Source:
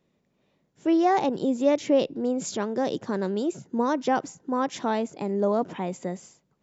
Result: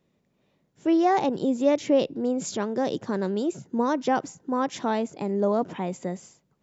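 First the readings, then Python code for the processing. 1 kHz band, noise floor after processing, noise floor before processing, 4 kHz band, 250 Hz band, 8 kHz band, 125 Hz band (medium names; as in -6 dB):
0.0 dB, -72 dBFS, -72 dBFS, 0.0 dB, +0.5 dB, no reading, +1.0 dB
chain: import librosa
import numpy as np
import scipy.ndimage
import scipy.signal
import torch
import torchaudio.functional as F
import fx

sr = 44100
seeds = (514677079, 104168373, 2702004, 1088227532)

y = fx.peak_eq(x, sr, hz=94.0, db=2.5, octaves=1.7)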